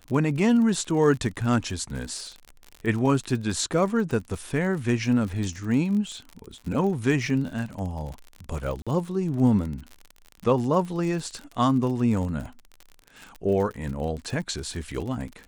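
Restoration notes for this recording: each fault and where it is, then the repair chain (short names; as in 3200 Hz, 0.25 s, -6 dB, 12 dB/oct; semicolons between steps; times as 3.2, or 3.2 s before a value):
crackle 50/s -32 dBFS
8.82–8.87 gap 46 ms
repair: de-click; interpolate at 8.82, 46 ms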